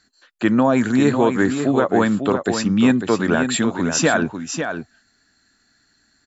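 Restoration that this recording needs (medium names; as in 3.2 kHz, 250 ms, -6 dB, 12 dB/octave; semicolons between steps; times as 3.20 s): inverse comb 548 ms -7.5 dB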